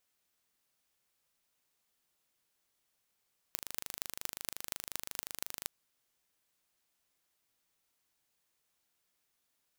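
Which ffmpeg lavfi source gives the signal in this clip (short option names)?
-f lavfi -i "aevalsrc='0.447*eq(mod(n,1723),0)*(0.5+0.5*eq(mod(n,10338),0))':d=2.11:s=44100"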